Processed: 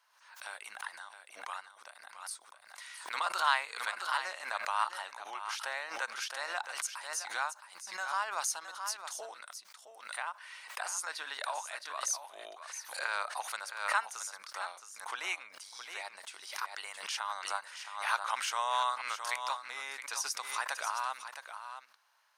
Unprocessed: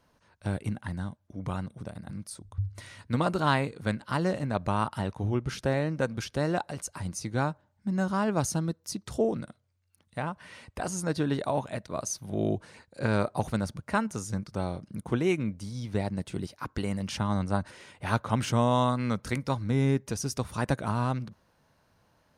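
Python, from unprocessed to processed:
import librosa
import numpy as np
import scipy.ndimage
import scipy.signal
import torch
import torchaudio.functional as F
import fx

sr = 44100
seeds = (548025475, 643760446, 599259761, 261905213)

p1 = scipy.signal.sosfilt(scipy.signal.butter(4, 940.0, 'highpass', fs=sr, output='sos'), x)
p2 = p1 + fx.echo_single(p1, sr, ms=667, db=-10.0, dry=0)
y = fx.pre_swell(p2, sr, db_per_s=79.0)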